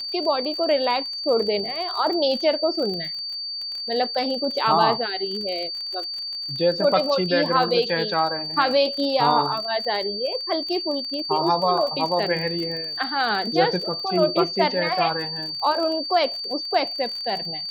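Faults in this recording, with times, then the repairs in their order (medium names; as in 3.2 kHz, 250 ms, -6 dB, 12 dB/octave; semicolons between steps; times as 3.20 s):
crackle 34 per s -29 dBFS
whine 4.6 kHz -28 dBFS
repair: de-click; band-stop 4.6 kHz, Q 30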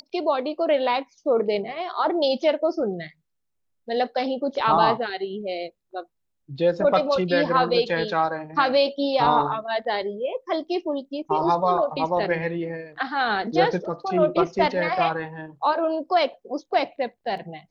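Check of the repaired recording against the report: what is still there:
nothing left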